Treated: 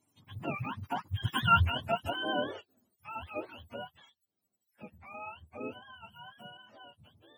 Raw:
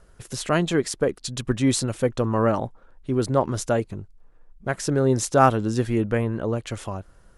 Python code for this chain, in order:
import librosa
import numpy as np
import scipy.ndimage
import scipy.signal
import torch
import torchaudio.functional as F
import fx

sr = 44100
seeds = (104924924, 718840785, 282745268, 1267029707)

y = fx.octave_mirror(x, sr, pivot_hz=610.0)
y = fx.doppler_pass(y, sr, speed_mps=35, closest_m=11.0, pass_at_s=1.52)
y = y * 10.0 ** (-1.5 / 20.0)